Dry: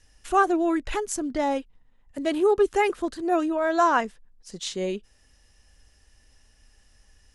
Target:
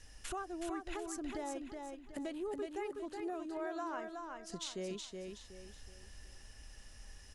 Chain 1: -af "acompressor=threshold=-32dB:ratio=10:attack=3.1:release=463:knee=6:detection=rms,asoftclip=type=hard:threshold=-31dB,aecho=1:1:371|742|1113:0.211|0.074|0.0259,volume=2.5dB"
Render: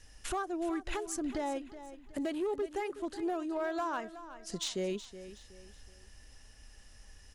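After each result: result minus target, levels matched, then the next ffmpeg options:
downward compressor: peak gain reduction −7 dB; echo-to-direct −9 dB
-af "acompressor=threshold=-40dB:ratio=10:attack=3.1:release=463:knee=6:detection=rms,asoftclip=type=hard:threshold=-31dB,aecho=1:1:371|742|1113:0.211|0.074|0.0259,volume=2.5dB"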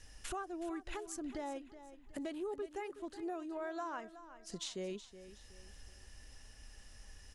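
echo-to-direct −9 dB
-af "acompressor=threshold=-40dB:ratio=10:attack=3.1:release=463:knee=6:detection=rms,asoftclip=type=hard:threshold=-31dB,aecho=1:1:371|742|1113|1484:0.596|0.208|0.073|0.0255,volume=2.5dB"

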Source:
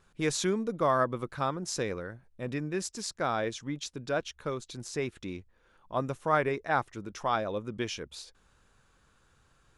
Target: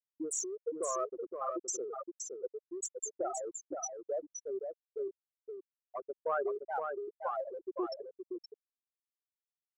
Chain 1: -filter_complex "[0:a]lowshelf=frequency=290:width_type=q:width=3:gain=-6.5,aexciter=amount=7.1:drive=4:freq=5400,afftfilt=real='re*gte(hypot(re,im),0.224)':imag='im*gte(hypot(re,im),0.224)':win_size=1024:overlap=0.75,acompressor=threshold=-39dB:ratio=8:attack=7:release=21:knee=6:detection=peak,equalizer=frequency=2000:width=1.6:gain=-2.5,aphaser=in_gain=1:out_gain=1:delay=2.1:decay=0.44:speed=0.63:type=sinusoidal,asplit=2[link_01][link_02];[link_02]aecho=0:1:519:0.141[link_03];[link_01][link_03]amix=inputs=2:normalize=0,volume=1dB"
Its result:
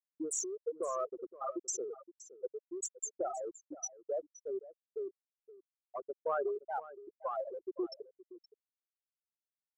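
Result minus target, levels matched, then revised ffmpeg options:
echo-to-direct −11.5 dB; 2,000 Hz band −3.5 dB
-filter_complex "[0:a]lowshelf=frequency=290:width_type=q:width=3:gain=-6.5,aexciter=amount=7.1:drive=4:freq=5400,afftfilt=real='re*gte(hypot(re,im),0.224)':imag='im*gte(hypot(re,im),0.224)':win_size=1024:overlap=0.75,acompressor=threshold=-39dB:ratio=8:attack=7:release=21:knee=6:detection=peak,equalizer=frequency=2000:width=1.6:gain=4,aphaser=in_gain=1:out_gain=1:delay=2.1:decay=0.44:speed=0.63:type=sinusoidal,asplit=2[link_01][link_02];[link_02]aecho=0:1:519:0.531[link_03];[link_01][link_03]amix=inputs=2:normalize=0,volume=1dB"

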